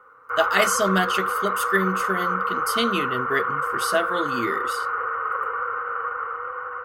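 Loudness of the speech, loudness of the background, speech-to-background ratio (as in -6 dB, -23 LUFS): -25.5 LUFS, -25.0 LUFS, -0.5 dB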